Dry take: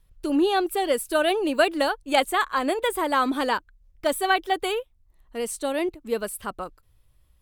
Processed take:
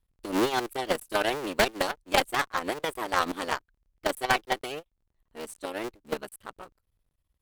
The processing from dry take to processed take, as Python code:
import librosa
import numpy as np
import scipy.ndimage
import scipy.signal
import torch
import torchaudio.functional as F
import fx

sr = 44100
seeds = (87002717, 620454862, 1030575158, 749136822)

y = fx.cycle_switch(x, sr, every=3, mode='muted')
y = fx.cheby_harmonics(y, sr, harmonics=(2, 5, 7), levels_db=(-7, -10, -10), full_scale_db=-6.5)
y = y * 10.0 ** (-4.0 / 20.0)